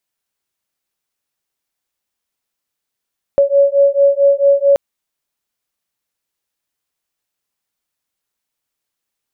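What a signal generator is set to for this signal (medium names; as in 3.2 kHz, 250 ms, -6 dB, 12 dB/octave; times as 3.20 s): beating tones 558 Hz, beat 4.5 Hz, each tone -11.5 dBFS 1.38 s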